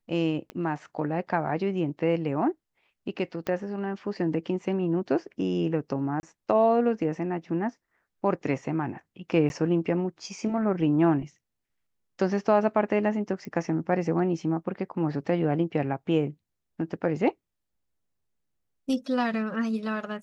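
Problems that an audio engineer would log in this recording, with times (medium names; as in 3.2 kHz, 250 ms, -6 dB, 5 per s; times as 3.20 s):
0.50 s: pop -24 dBFS
3.47 s: pop -17 dBFS
6.20–6.23 s: dropout 30 ms
9.49–9.50 s: dropout 11 ms
13.45 s: pop -25 dBFS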